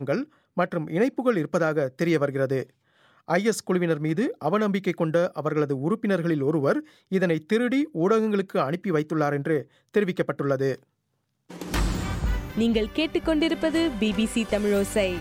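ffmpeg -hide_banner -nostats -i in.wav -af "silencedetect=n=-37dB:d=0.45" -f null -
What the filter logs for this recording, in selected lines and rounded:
silence_start: 2.64
silence_end: 3.29 | silence_duration: 0.65
silence_start: 10.75
silence_end: 11.50 | silence_duration: 0.75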